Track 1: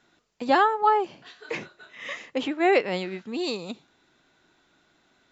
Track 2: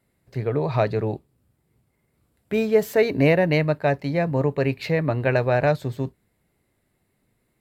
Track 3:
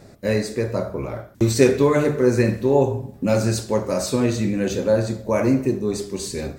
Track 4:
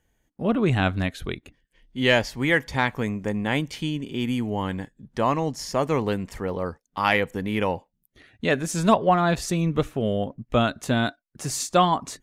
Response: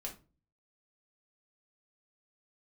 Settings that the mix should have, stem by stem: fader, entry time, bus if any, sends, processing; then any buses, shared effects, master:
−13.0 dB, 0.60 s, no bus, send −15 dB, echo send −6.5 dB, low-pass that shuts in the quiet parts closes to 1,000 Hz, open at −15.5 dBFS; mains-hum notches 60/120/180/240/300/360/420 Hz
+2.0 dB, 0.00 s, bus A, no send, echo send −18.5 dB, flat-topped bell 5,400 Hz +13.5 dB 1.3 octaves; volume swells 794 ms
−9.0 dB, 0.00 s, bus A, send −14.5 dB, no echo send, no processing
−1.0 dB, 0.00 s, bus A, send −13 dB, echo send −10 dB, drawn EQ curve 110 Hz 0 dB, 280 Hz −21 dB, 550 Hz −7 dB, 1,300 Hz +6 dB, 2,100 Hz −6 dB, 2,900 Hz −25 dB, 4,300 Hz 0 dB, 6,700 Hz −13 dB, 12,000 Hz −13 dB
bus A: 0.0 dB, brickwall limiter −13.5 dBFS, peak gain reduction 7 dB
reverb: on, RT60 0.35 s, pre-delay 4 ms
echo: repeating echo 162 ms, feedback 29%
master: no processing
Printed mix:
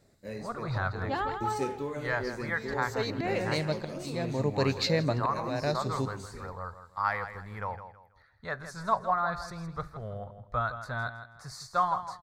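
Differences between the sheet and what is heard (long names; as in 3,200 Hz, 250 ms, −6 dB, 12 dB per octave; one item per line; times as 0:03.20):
stem 2 +2.0 dB → −5.0 dB
stem 3 −9.0 dB → −20.0 dB
stem 4 −1.0 dB → −8.5 dB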